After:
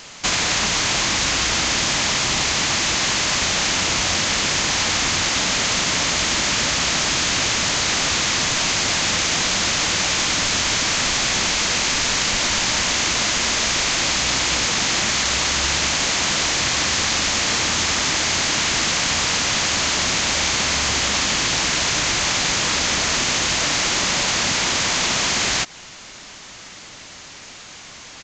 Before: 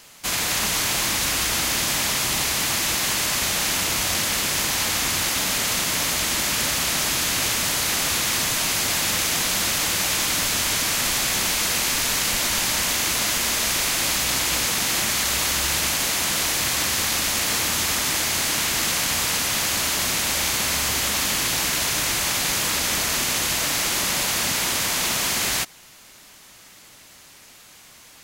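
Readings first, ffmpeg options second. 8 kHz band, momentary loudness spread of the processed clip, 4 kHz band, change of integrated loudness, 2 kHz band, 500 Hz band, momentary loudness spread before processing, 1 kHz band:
+1.5 dB, 0 LU, +4.0 dB, +2.5 dB, +4.0 dB, +4.0 dB, 1 LU, +4.0 dB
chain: -af "acompressor=threshold=0.0501:ratio=4,aresample=16000,aresample=44100,acontrast=71,volume=1.41"

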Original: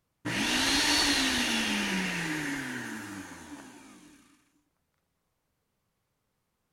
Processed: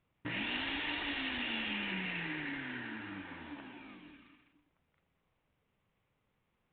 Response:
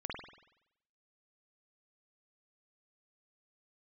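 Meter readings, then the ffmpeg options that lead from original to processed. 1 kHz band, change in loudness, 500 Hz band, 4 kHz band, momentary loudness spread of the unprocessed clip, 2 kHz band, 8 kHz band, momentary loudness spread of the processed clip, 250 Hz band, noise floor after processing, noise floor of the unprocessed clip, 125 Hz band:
-9.5 dB, -10.5 dB, -9.0 dB, -11.5 dB, 19 LU, -7.0 dB, under -40 dB, 15 LU, -9.0 dB, -81 dBFS, -80 dBFS, -8.0 dB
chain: -af "acompressor=threshold=0.00631:ratio=2,aexciter=amount=1.7:drive=3.3:freq=2100" -ar 8000 -c:a adpcm_ima_wav

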